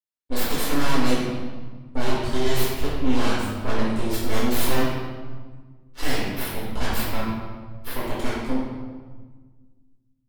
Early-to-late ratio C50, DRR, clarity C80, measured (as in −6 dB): −1.0 dB, −9.0 dB, 1.5 dB